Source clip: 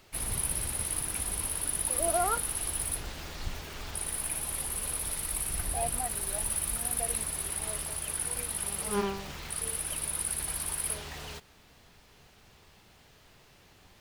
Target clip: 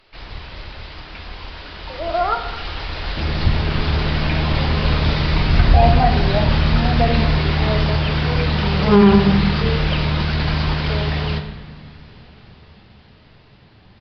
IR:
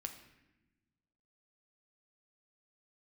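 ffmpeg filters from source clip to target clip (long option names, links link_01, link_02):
-filter_complex "[0:a]aresample=11025,aresample=44100,dynaudnorm=framelen=470:gausssize=13:maxgain=14dB,asetnsamples=nb_out_samples=441:pad=0,asendcmd='3.17 equalizer g 7.5',equalizer=frequency=150:width_type=o:width=2.5:gain=-7[link_01];[1:a]atrim=start_sample=2205,asetrate=34398,aresample=44100[link_02];[link_01][link_02]afir=irnorm=-1:irlink=0,alimiter=level_in=8dB:limit=-1dB:release=50:level=0:latency=1,volume=-1dB"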